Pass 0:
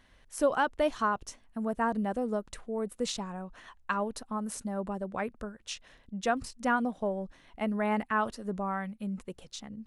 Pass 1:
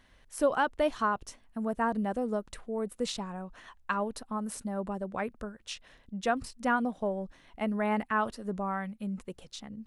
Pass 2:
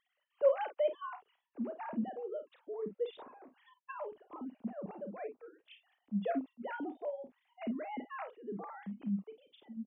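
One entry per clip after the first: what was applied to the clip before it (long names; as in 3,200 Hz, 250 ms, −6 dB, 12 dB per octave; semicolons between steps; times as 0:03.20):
dynamic equaliser 6,500 Hz, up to −4 dB, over −55 dBFS, Q 2.6
three sine waves on the formant tracks; parametric band 1,500 Hz −9.5 dB 1.5 octaves; ambience of single reflections 34 ms −11.5 dB, 50 ms −12 dB; level −5 dB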